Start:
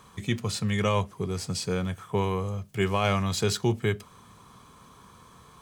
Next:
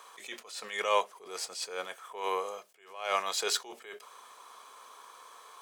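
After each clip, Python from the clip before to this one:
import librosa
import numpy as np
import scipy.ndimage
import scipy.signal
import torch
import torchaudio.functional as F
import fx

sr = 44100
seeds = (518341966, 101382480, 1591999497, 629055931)

y = scipy.signal.sosfilt(scipy.signal.butter(4, 490.0, 'highpass', fs=sr, output='sos'), x)
y = fx.attack_slew(y, sr, db_per_s=100.0)
y = F.gain(torch.from_numpy(y), 2.5).numpy()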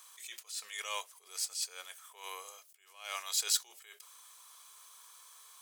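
y = np.diff(x, prepend=0.0)
y = F.gain(torch.from_numpy(y), 3.5).numpy()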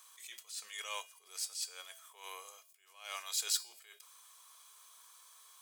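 y = fx.comb_fb(x, sr, f0_hz=220.0, decay_s=0.5, harmonics='odd', damping=0.0, mix_pct=70)
y = F.gain(torch.from_numpy(y), 6.5).numpy()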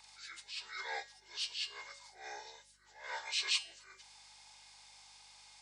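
y = fx.partial_stretch(x, sr, pct=83)
y = fx.add_hum(y, sr, base_hz=50, snr_db=34)
y = F.gain(torch.from_numpy(y), 2.0).numpy()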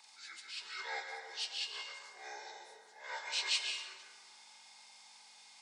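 y = fx.brickwall_highpass(x, sr, low_hz=200.0)
y = fx.rev_plate(y, sr, seeds[0], rt60_s=1.7, hf_ratio=0.5, predelay_ms=115, drr_db=3.0)
y = F.gain(torch.from_numpy(y), -1.0).numpy()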